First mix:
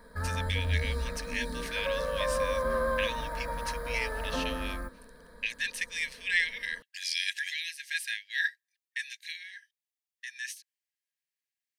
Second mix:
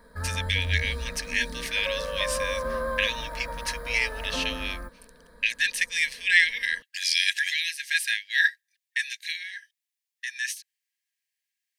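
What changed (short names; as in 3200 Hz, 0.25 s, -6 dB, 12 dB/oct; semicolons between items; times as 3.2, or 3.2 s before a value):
speech +8.0 dB; reverb: off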